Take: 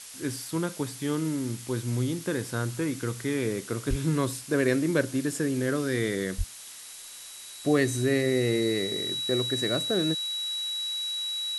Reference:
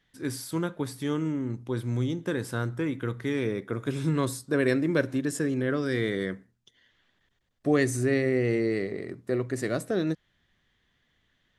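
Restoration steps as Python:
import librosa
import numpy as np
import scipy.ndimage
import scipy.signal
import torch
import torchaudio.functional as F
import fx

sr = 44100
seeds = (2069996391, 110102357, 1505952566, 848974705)

y = fx.notch(x, sr, hz=3900.0, q=30.0)
y = fx.highpass(y, sr, hz=140.0, slope=24, at=(3.89, 4.01), fade=0.02)
y = fx.highpass(y, sr, hz=140.0, slope=24, at=(6.37, 6.49), fade=0.02)
y = fx.noise_reduce(y, sr, print_start_s=6.44, print_end_s=6.94, reduce_db=28.0)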